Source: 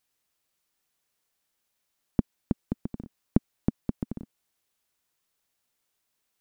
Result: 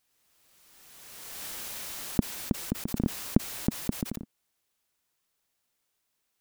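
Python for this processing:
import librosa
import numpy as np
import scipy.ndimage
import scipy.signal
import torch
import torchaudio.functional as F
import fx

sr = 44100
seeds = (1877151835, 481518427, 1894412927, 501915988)

y = fx.pre_swell(x, sr, db_per_s=26.0)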